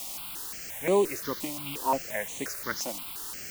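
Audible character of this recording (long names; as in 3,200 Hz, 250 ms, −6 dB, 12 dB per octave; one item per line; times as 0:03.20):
a quantiser's noise floor 6 bits, dither triangular
notches that jump at a steady rate 5.7 Hz 430–5,200 Hz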